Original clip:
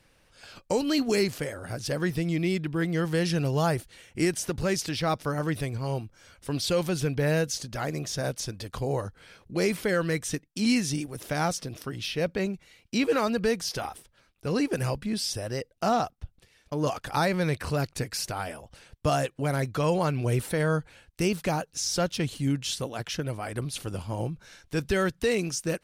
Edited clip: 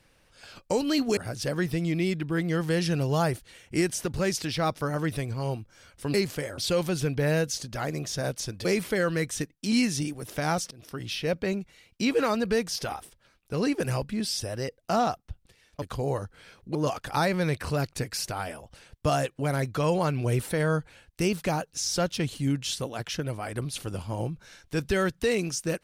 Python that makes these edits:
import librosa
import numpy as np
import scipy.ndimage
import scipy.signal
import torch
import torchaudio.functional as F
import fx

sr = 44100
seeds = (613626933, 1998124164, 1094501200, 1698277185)

y = fx.edit(x, sr, fx.move(start_s=1.17, length_s=0.44, to_s=6.58),
    fx.move(start_s=8.65, length_s=0.93, to_s=16.75),
    fx.fade_in_from(start_s=11.64, length_s=0.3, floor_db=-23.5), tone=tone)